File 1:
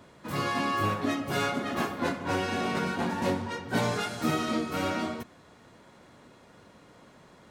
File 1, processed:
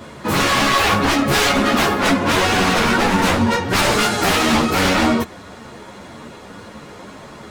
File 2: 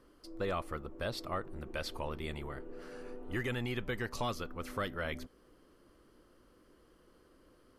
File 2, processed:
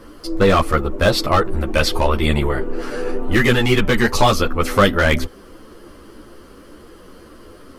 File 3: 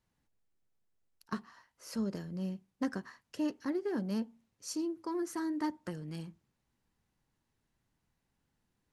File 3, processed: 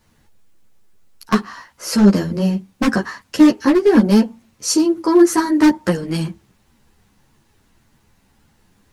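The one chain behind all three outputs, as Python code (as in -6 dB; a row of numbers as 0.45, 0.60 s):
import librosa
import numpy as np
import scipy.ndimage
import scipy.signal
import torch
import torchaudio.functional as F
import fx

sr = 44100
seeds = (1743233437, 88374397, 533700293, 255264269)

y = 10.0 ** (-28.5 / 20.0) * (np.abs((x / 10.0 ** (-28.5 / 20.0) + 3.0) % 4.0 - 2.0) - 1.0)
y = fx.ensemble(y, sr)
y = y * 10.0 ** (-18 / 20.0) / np.sqrt(np.mean(np.square(y)))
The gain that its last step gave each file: +20.5, +25.0, +25.5 dB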